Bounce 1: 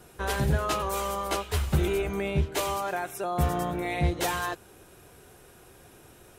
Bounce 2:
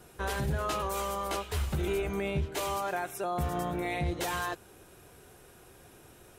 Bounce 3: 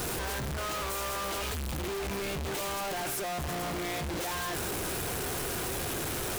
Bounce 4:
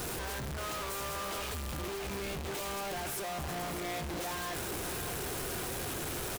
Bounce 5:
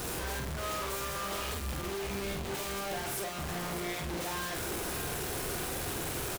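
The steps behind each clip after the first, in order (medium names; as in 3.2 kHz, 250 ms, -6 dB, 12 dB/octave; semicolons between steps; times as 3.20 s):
peak limiter -20.5 dBFS, peak gain reduction 7.5 dB; trim -2 dB
one-bit comparator
delay 606 ms -9.5 dB; trim -4 dB
doubling 46 ms -4 dB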